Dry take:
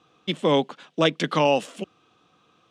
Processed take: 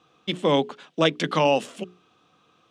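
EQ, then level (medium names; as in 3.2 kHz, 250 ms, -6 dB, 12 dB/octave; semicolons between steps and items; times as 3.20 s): hum notches 60/120/180/240/300/360/420 Hz; 0.0 dB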